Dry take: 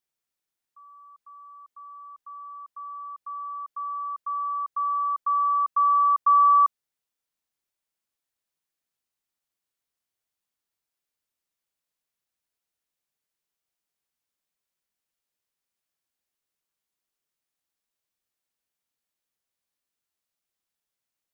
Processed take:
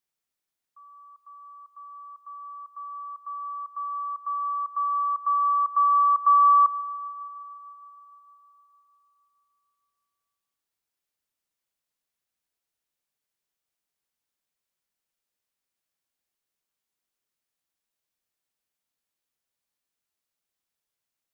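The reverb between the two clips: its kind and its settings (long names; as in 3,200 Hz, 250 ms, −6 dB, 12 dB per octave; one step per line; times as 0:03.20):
spring reverb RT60 3.9 s, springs 31/35/50 ms, chirp 50 ms, DRR 17.5 dB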